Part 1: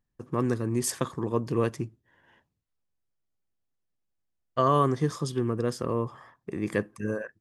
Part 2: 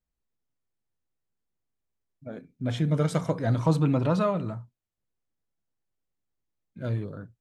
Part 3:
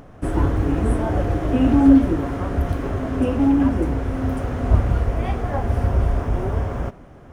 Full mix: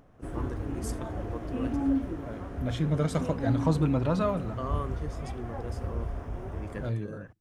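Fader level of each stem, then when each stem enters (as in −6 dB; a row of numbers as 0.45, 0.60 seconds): −13.0, −2.5, −14.5 decibels; 0.00, 0.00, 0.00 seconds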